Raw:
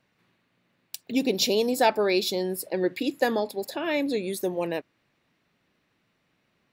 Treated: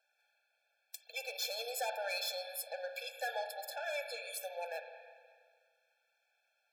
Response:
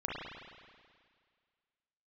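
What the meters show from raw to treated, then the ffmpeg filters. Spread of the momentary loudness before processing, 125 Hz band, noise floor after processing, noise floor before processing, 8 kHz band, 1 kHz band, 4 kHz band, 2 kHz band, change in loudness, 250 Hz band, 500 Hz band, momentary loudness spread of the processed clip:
9 LU, under -40 dB, -80 dBFS, -72 dBFS, -8.5 dB, -12.5 dB, -10.5 dB, -8.5 dB, -13.5 dB, under -40 dB, -16.0 dB, 13 LU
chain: -filter_complex "[0:a]highpass=f=670:w=0.5412,highpass=f=670:w=1.3066,asoftclip=type=tanh:threshold=0.0355,asplit=2[s0][s1];[1:a]atrim=start_sample=2205,highshelf=f=2900:g=6[s2];[s1][s2]afir=irnorm=-1:irlink=0,volume=0.398[s3];[s0][s3]amix=inputs=2:normalize=0,afftfilt=real='re*eq(mod(floor(b*sr/1024/450),2),1)':imag='im*eq(mod(floor(b*sr/1024/450),2),1)':win_size=1024:overlap=0.75,volume=0.531"

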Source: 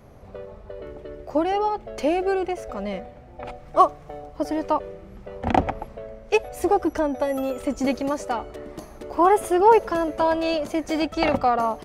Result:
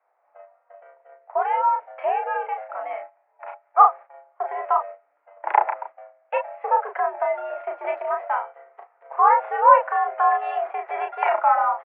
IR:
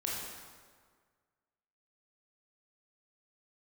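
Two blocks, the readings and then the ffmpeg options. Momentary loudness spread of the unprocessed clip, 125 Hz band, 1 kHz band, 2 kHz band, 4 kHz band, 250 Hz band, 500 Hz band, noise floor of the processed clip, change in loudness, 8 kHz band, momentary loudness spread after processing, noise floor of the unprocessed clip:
20 LU, under -40 dB, +4.0 dB, +2.0 dB, under -15 dB, under -30 dB, -4.5 dB, -67 dBFS, +1.0 dB, under -40 dB, 16 LU, -45 dBFS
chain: -filter_complex "[0:a]agate=range=0.141:threshold=0.02:ratio=16:detection=peak,highpass=f=550:t=q:w=0.5412,highpass=f=550:t=q:w=1.307,lowpass=f=2100:t=q:w=0.5176,lowpass=f=2100:t=q:w=0.7071,lowpass=f=2100:t=q:w=1.932,afreqshift=95,asplit=2[s0][s1];[s1]adelay=34,volume=0.596[s2];[s0][s2]amix=inputs=2:normalize=0,volume=1.26"

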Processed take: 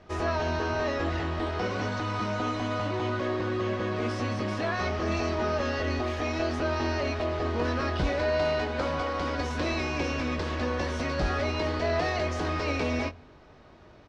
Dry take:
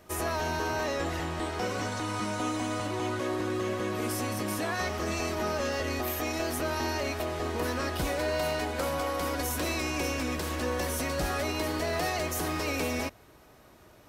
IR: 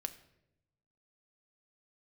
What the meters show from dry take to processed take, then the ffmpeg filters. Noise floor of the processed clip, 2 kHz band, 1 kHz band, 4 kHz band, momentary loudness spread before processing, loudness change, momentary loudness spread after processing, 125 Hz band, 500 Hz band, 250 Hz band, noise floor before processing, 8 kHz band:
-53 dBFS, +1.5 dB, +1.5 dB, -0.5 dB, 2 LU, +1.5 dB, 3 LU, +4.5 dB, +2.5 dB, +2.0 dB, -56 dBFS, -10.0 dB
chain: -filter_complex "[0:a]lowpass=f=5100:w=0.5412,lowpass=f=5100:w=1.3066,asplit=2[s0][s1];[s1]adelay=21,volume=0.398[s2];[s0][s2]amix=inputs=2:normalize=0,asplit=2[s3][s4];[1:a]atrim=start_sample=2205,lowpass=2600,lowshelf=f=130:g=12[s5];[s4][s5]afir=irnorm=-1:irlink=0,volume=0.299[s6];[s3][s6]amix=inputs=2:normalize=0"

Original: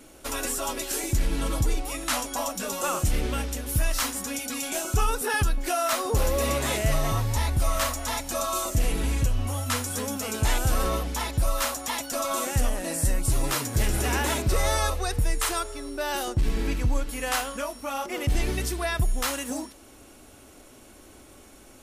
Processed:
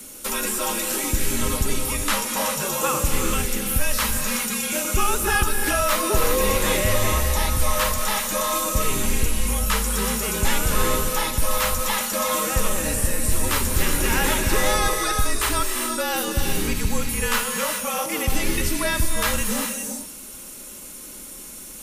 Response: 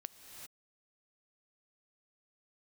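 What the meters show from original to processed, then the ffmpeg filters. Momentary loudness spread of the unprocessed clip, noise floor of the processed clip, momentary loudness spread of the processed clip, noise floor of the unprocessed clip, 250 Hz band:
5 LU, -39 dBFS, 5 LU, -50 dBFS, +4.5 dB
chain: -filter_complex "[1:a]atrim=start_sample=2205[s0];[0:a][s0]afir=irnorm=-1:irlink=0,acrossover=split=3400[s1][s2];[s2]acompressor=threshold=0.00447:ratio=4:attack=1:release=60[s3];[s1][s3]amix=inputs=2:normalize=0,asuperstop=centerf=750:order=4:qfactor=6.2,aemphasis=mode=production:type=75kf,afreqshift=-42,volume=2.66"

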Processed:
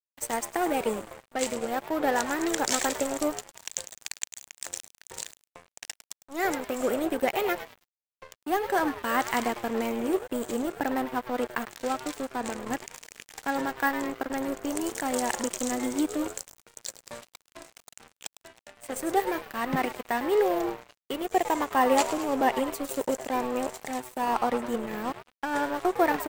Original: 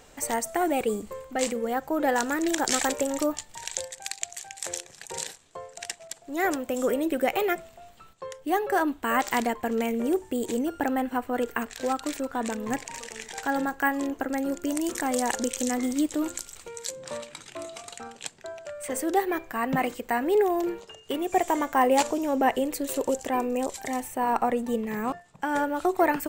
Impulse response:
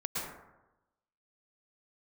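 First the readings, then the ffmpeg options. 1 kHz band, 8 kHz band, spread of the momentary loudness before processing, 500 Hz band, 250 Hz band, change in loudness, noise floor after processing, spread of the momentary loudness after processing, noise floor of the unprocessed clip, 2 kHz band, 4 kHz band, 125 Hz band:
-1.0 dB, -2.0 dB, 13 LU, -1.5 dB, -2.5 dB, -1.5 dB, under -85 dBFS, 15 LU, -53 dBFS, -1.0 dB, -1.0 dB, -1.0 dB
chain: -filter_complex "[0:a]asplit=7[s0][s1][s2][s3][s4][s5][s6];[s1]adelay=104,afreqshift=120,volume=0.299[s7];[s2]adelay=208,afreqshift=240,volume=0.155[s8];[s3]adelay=312,afreqshift=360,volume=0.0804[s9];[s4]adelay=416,afreqshift=480,volume=0.0422[s10];[s5]adelay=520,afreqshift=600,volume=0.0219[s11];[s6]adelay=624,afreqshift=720,volume=0.0114[s12];[s0][s7][s8][s9][s10][s11][s12]amix=inputs=7:normalize=0,aeval=exprs='sgn(val(0))*max(abs(val(0))-0.0168,0)':c=same"

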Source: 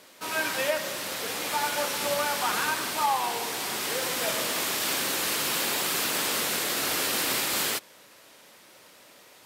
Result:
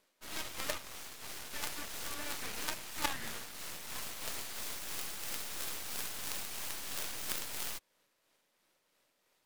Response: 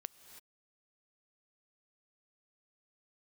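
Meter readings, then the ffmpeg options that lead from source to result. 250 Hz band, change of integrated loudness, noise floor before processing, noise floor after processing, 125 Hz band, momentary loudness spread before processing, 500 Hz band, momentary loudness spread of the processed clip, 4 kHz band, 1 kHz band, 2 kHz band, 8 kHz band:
-14.0 dB, -13.0 dB, -54 dBFS, -77 dBFS, -9.5 dB, 5 LU, -18.0 dB, 6 LU, -13.5 dB, -17.0 dB, -14.5 dB, -12.0 dB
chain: -af "tremolo=f=3:d=0.31,aeval=exprs='0.237*(cos(1*acos(clip(val(0)/0.237,-1,1)))-cos(1*PI/2))+0.0841*(cos(2*acos(clip(val(0)/0.237,-1,1)))-cos(2*PI/2))+0.0841*(cos(3*acos(clip(val(0)/0.237,-1,1)))-cos(3*PI/2))+0.0188*(cos(8*acos(clip(val(0)/0.237,-1,1)))-cos(8*PI/2))':c=same,volume=1.26"

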